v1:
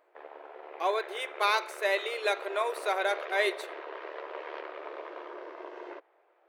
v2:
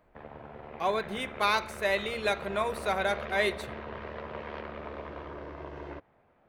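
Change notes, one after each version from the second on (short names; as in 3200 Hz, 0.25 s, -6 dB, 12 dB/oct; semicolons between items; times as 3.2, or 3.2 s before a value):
master: remove brick-wall FIR high-pass 310 Hz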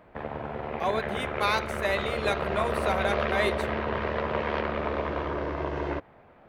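background +11.0 dB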